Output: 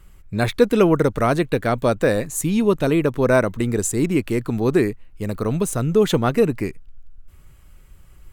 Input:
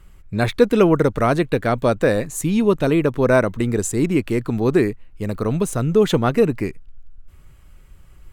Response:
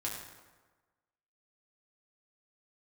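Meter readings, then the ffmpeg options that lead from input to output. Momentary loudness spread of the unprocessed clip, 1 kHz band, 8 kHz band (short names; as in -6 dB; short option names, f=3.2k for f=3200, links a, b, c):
7 LU, -1.0 dB, +2.0 dB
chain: -af "highshelf=f=7.2k:g=5.5,volume=-1dB"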